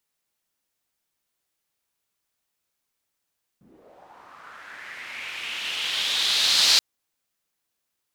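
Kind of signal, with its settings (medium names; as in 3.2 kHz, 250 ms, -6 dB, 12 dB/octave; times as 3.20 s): swept filtered noise pink, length 3.18 s bandpass, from 180 Hz, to 4.4 kHz, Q 3.4, linear, gain ramp +39.5 dB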